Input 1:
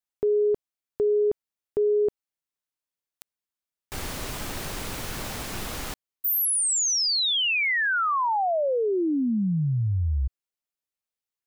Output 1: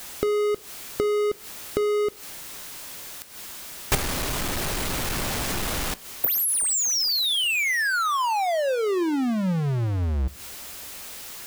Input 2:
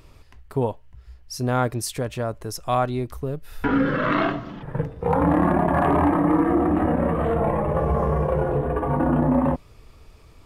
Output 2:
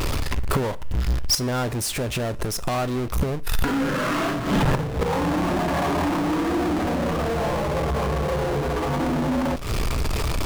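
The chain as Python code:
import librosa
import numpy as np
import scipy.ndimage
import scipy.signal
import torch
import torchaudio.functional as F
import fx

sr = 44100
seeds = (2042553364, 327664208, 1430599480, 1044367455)

y = fx.gate_flip(x, sr, shuts_db=-24.0, range_db=-28)
y = fx.power_curve(y, sr, exponent=0.35)
y = fx.rev_double_slope(y, sr, seeds[0], early_s=0.38, late_s=2.8, knee_db=-21, drr_db=17.5)
y = y * librosa.db_to_amplitude(5.5)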